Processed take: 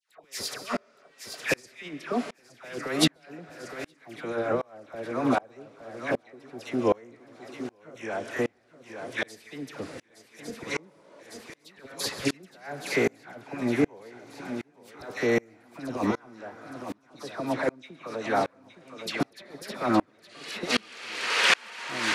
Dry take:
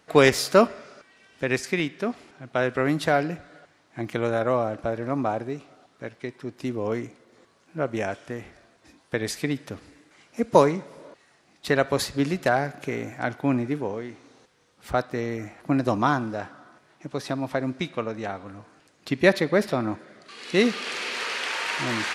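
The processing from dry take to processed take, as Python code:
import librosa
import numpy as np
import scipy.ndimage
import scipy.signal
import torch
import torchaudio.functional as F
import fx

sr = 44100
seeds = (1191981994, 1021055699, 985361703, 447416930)

p1 = fx.highpass(x, sr, hz=410.0, slope=6)
p2 = fx.over_compress(p1, sr, threshold_db=-29.0, ratio=-0.5)
p3 = fx.dispersion(p2, sr, late='lows', ms=98.0, hz=1400.0)
p4 = p3 + fx.echo_swing(p3, sr, ms=1155, ratio=3, feedback_pct=39, wet_db=-11.5, dry=0)
p5 = fx.rev_plate(p4, sr, seeds[0], rt60_s=0.65, hf_ratio=0.8, predelay_ms=120, drr_db=18.5)
p6 = fx.tremolo_decay(p5, sr, direction='swelling', hz=1.3, depth_db=33)
y = F.gain(torch.from_numpy(p6), 9.0).numpy()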